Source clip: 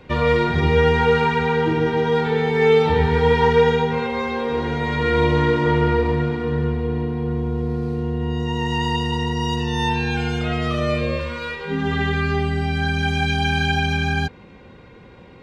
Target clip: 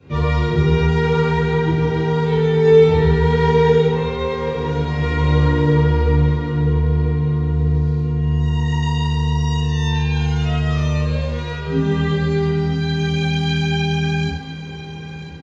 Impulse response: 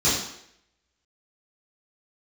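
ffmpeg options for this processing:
-filter_complex "[0:a]aecho=1:1:993|1986|2979|3972:0.224|0.0963|0.0414|0.0178[a];[1:a]atrim=start_sample=2205[b];[a][b]afir=irnorm=-1:irlink=0,volume=-17dB"

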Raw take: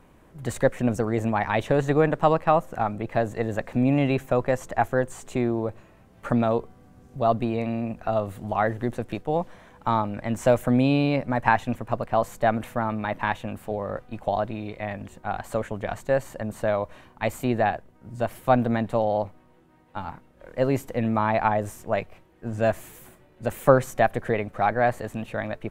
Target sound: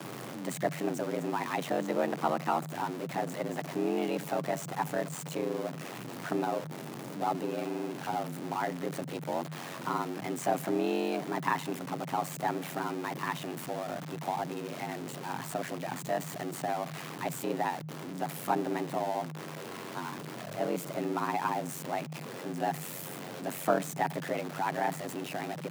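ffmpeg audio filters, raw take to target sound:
-af "aeval=exprs='val(0)+0.5*0.0596*sgn(val(0))':c=same,aeval=exprs='val(0)*sin(2*PI*46*n/s)':c=same,afreqshift=110,volume=-8.5dB"

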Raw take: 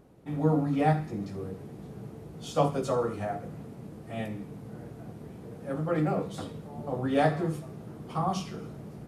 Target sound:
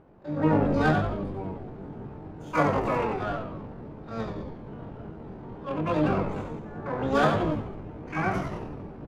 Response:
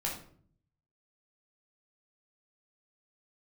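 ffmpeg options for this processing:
-filter_complex "[0:a]asplit=8[a][b][c][d][e][f][g][h];[b]adelay=87,afreqshift=-51,volume=-4.5dB[i];[c]adelay=174,afreqshift=-102,volume=-10dB[j];[d]adelay=261,afreqshift=-153,volume=-15.5dB[k];[e]adelay=348,afreqshift=-204,volume=-21dB[l];[f]adelay=435,afreqshift=-255,volume=-26.6dB[m];[g]adelay=522,afreqshift=-306,volume=-32.1dB[n];[h]adelay=609,afreqshift=-357,volume=-37.6dB[o];[a][i][j][k][l][m][n][o]amix=inputs=8:normalize=0,adynamicsmooth=sensitivity=2:basefreq=1.4k,asplit=2[p][q];[q]asetrate=88200,aresample=44100,atempo=0.5,volume=-2dB[r];[p][r]amix=inputs=2:normalize=0,volume=-1dB"

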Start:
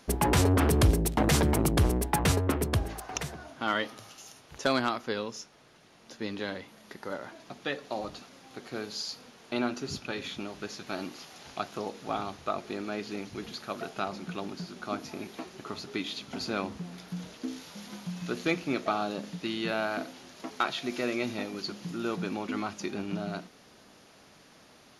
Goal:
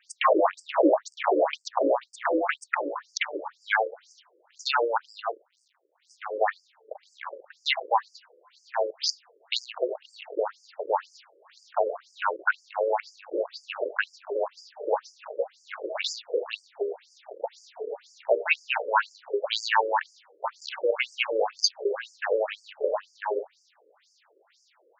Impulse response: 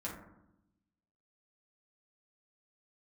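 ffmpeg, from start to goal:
-filter_complex "[0:a]afreqshift=230,lowpass=f=8.5k:w=0.5412,lowpass=f=8.5k:w=1.3066,acrossover=split=160|560|6000[a][b][c][d];[b]acompressor=threshold=-42dB:ratio=6[e];[a][e][c][d]amix=inputs=4:normalize=0,asettb=1/sr,asplit=3[f][g][h];[f]atrim=end=5.394[i];[g]atrim=start=5.39:end=6.43,asetpts=PTS-STARTPTS,afade=t=in:d=0.004:c=qsin,afade=t=out:st=1.036:d=0.004:c=qsin,acrusher=bits=6:dc=4:mix=0:aa=0.000001[j];[h]atrim=start=6.426[k];[i][j]acrossfade=d=0.004:c1=hsin:c2=qsin[l];[l][k]acrossfade=d=0.004:c1=qsin:c2=hsin,afwtdn=0.01,alimiter=level_in=21dB:limit=-1dB:release=50:level=0:latency=1,afftfilt=real='re*between(b*sr/1024,400*pow(6700/400,0.5+0.5*sin(2*PI*2*pts/sr))/1.41,400*pow(6700/400,0.5+0.5*sin(2*PI*2*pts/sr))*1.41)':imag='im*between(b*sr/1024,400*pow(6700/400,0.5+0.5*sin(2*PI*2*pts/sr))/1.41,400*pow(6700/400,0.5+0.5*sin(2*PI*2*pts/sr))*1.41)':win_size=1024:overlap=0.75,volume=-5.5dB"

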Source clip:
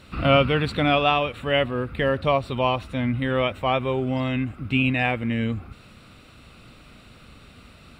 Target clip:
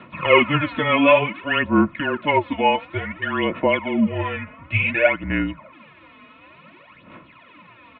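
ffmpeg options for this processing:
-af "aecho=1:1:2.6:0.71,aphaser=in_gain=1:out_gain=1:delay=4.9:decay=0.72:speed=0.56:type=sinusoidal,highpass=f=330:t=q:w=0.5412,highpass=f=330:t=q:w=1.307,lowpass=f=3k:t=q:w=0.5176,lowpass=f=3k:t=q:w=0.7071,lowpass=f=3k:t=q:w=1.932,afreqshift=-160,volume=1dB"

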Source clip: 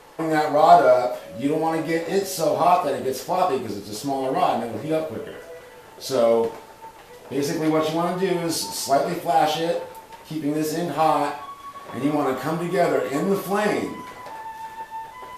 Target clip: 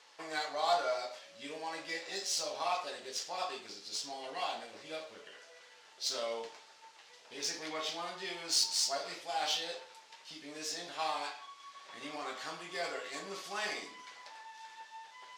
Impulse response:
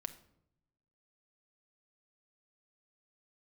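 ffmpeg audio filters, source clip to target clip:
-af "bandpass=f=5.5k:t=q:w=1.2:csg=0,adynamicsmooth=sensitivity=4:basefreq=5.8k,volume=1.5dB"

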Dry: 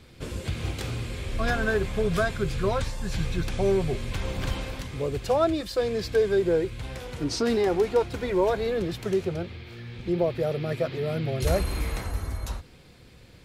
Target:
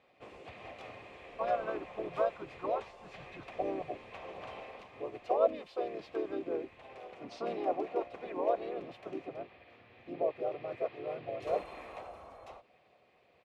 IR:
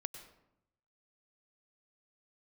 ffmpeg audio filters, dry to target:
-filter_complex "[0:a]asplit=3[a][b][c];[a]bandpass=f=730:t=q:w=8,volume=0dB[d];[b]bandpass=f=1.09k:t=q:w=8,volume=-6dB[e];[c]bandpass=f=2.44k:t=q:w=8,volume=-9dB[f];[d][e][f]amix=inputs=3:normalize=0,asplit=4[g][h][i][j];[h]asetrate=29433,aresample=44100,atempo=1.49831,volume=-12dB[k];[i]asetrate=33038,aresample=44100,atempo=1.33484,volume=-6dB[l];[j]asetrate=37084,aresample=44100,atempo=1.18921,volume=-4dB[m];[g][k][l][m]amix=inputs=4:normalize=0"

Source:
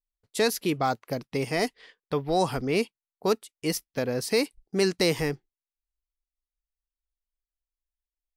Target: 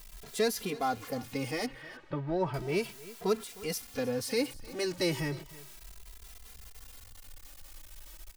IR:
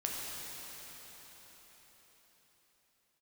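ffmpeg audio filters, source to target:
-filter_complex "[0:a]aeval=exprs='val(0)+0.5*0.0237*sgn(val(0))':c=same,asettb=1/sr,asplit=3[a][b][c];[a]atrim=end=1.664[d];[b]atrim=start=1.66:end=2.54,asetpts=PTS-STARTPTS,afade=t=in:d=0.004:c=qsin,afade=t=out:st=0.876:d=0.004:c=qsin,lowpass=2.1k[e];[c]atrim=start=2.536[f];[d][e]acrossfade=d=0.004:c1=hsin:c2=qsin[g];[g][f]acrossfade=d=0.004:c1=qsin:c2=hsin,asplit=2[h][i];[i]aecho=0:1:309:0.112[j];[h][j]amix=inputs=2:normalize=0,asplit=2[k][l];[l]adelay=2.6,afreqshift=0.34[m];[k][m]amix=inputs=2:normalize=1,volume=-4.5dB"

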